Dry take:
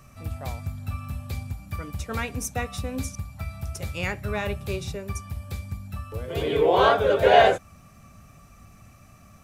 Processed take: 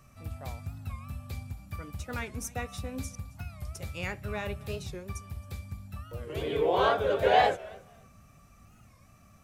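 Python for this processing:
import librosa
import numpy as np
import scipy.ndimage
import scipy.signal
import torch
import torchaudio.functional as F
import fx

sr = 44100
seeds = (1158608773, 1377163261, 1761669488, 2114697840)

p1 = x + fx.echo_feedback(x, sr, ms=270, feedback_pct=18, wet_db=-22.5, dry=0)
p2 = fx.record_warp(p1, sr, rpm=45.0, depth_cents=160.0)
y = F.gain(torch.from_numpy(p2), -6.5).numpy()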